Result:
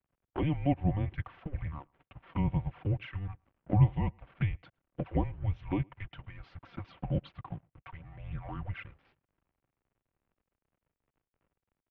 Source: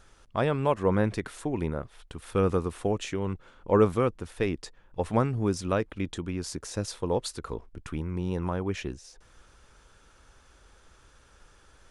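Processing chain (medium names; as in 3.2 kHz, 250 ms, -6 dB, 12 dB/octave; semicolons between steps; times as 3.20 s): comb 4.8 ms, depth 68%; touch-sensitive flanger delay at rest 10.6 ms, full sweep at -22.5 dBFS; hysteresis with a dead band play -45.5 dBFS; speakerphone echo 110 ms, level -30 dB; mistuned SSB -300 Hz 260–3200 Hz; trim -3 dB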